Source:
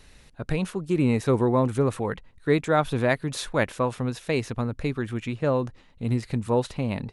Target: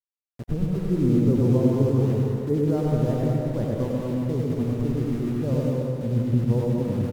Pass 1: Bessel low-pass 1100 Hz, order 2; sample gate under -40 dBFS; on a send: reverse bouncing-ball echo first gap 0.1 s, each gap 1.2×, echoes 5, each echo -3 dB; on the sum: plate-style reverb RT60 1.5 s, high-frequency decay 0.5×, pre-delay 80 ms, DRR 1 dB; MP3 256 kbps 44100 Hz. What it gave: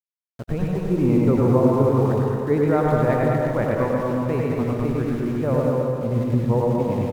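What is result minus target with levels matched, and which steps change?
1000 Hz band +9.5 dB
change: Bessel low-pass 310 Hz, order 2

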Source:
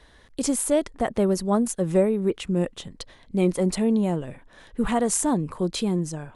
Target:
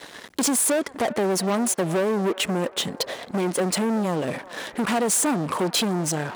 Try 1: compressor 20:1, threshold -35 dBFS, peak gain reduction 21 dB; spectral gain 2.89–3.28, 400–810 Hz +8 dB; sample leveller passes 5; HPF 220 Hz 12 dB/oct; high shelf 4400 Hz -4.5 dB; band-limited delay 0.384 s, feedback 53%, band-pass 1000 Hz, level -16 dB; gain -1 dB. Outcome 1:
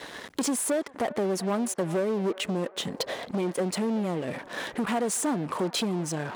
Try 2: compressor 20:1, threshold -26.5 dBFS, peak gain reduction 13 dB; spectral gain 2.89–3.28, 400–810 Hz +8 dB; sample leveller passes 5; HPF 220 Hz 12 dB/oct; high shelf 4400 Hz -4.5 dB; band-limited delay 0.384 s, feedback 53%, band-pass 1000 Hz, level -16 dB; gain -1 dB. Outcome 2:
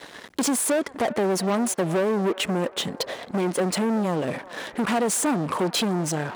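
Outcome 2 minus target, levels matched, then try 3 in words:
8000 Hz band -2.5 dB
compressor 20:1, threshold -26.5 dBFS, peak gain reduction 13 dB; spectral gain 2.89–3.28, 400–810 Hz +8 dB; sample leveller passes 5; HPF 220 Hz 12 dB/oct; band-limited delay 0.384 s, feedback 53%, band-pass 1000 Hz, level -16 dB; gain -1 dB

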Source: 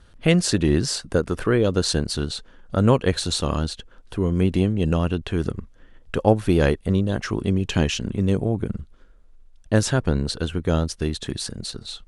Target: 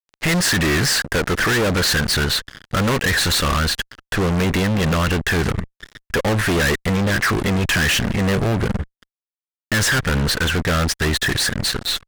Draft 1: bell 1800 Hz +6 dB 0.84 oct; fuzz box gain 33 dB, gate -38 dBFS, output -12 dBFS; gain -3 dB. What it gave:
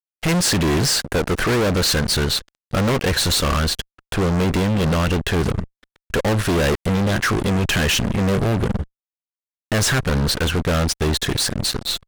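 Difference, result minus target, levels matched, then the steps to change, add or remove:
2000 Hz band -4.5 dB
change: bell 1800 Hz +17.5 dB 0.84 oct

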